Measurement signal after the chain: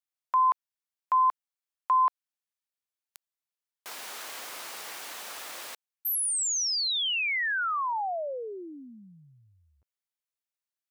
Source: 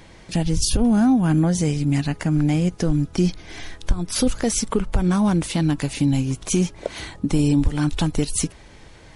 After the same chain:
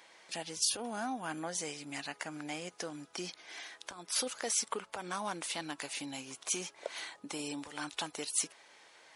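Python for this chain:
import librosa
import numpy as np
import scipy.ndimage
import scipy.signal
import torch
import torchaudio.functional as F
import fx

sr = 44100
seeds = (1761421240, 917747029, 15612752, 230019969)

y = scipy.signal.sosfilt(scipy.signal.butter(2, 690.0, 'highpass', fs=sr, output='sos'), x)
y = y * 10.0 ** (-7.5 / 20.0)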